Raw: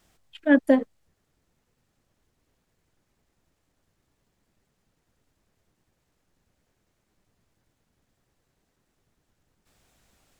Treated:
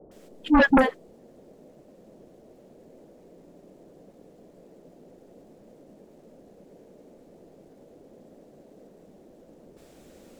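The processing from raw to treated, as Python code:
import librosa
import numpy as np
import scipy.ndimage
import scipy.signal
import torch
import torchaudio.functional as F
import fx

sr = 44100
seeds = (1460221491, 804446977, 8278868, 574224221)

y = fx.dispersion(x, sr, late='highs', ms=114.0, hz=430.0)
y = fx.dmg_noise_band(y, sr, seeds[0], low_hz=160.0, high_hz=600.0, level_db=-59.0)
y = fx.fold_sine(y, sr, drive_db=9, ceiling_db=-6.5)
y = y * 10.0 ** (-6.0 / 20.0)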